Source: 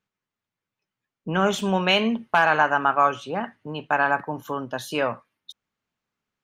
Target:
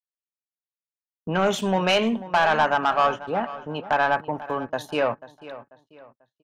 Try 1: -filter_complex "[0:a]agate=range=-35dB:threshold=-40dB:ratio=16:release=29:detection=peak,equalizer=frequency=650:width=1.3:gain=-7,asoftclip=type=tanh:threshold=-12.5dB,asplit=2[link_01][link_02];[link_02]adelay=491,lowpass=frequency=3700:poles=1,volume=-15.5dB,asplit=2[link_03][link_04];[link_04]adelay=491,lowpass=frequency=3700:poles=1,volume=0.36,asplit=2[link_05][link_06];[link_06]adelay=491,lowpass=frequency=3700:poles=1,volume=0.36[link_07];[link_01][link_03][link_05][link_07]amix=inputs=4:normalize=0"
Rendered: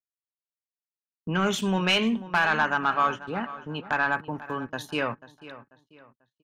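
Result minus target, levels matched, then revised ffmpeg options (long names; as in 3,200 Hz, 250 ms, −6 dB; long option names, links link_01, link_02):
500 Hz band −5.0 dB
-filter_complex "[0:a]agate=range=-35dB:threshold=-40dB:ratio=16:release=29:detection=peak,equalizer=frequency=650:width=1.3:gain=4.5,asoftclip=type=tanh:threshold=-12.5dB,asplit=2[link_01][link_02];[link_02]adelay=491,lowpass=frequency=3700:poles=1,volume=-15.5dB,asplit=2[link_03][link_04];[link_04]adelay=491,lowpass=frequency=3700:poles=1,volume=0.36,asplit=2[link_05][link_06];[link_06]adelay=491,lowpass=frequency=3700:poles=1,volume=0.36[link_07];[link_01][link_03][link_05][link_07]amix=inputs=4:normalize=0"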